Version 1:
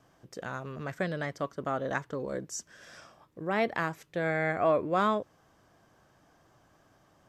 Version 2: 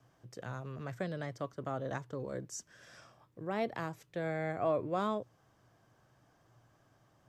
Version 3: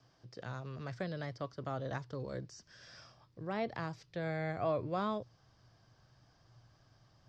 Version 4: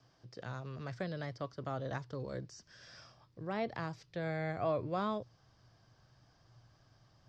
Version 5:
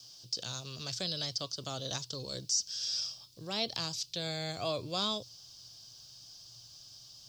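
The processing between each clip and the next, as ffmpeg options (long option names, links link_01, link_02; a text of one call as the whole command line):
ffmpeg -i in.wav -filter_complex "[0:a]equalizer=frequency=120:width=6.2:gain=13,acrossover=split=280|1200|2600[link_01][link_02][link_03][link_04];[link_03]acompressor=threshold=-47dB:ratio=6[link_05];[link_01][link_02][link_05][link_04]amix=inputs=4:normalize=0,volume=-5.5dB" out.wav
ffmpeg -i in.wav -filter_complex "[0:a]asubboost=boost=2.5:cutoff=160,lowpass=frequency=4900:width_type=q:width=4.2,acrossover=split=2800[link_01][link_02];[link_02]acompressor=threshold=-53dB:ratio=4:attack=1:release=60[link_03];[link_01][link_03]amix=inputs=2:normalize=0,volume=-1.5dB" out.wav
ffmpeg -i in.wav -af anull out.wav
ffmpeg -i in.wav -af "aexciter=amount=14.2:drive=7:freq=3000,volume=-2dB" out.wav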